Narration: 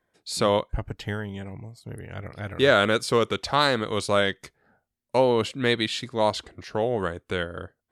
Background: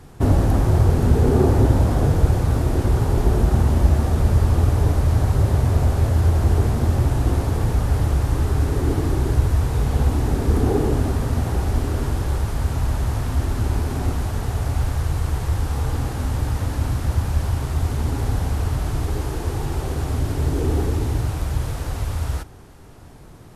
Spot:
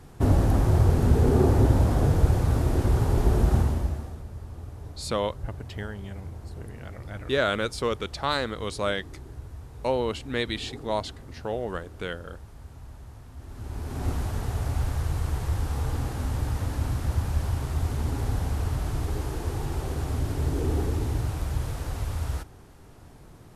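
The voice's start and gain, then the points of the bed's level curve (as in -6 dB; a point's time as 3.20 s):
4.70 s, -5.5 dB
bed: 3.57 s -4 dB
4.26 s -22.5 dB
13.36 s -22.5 dB
14.09 s -5.5 dB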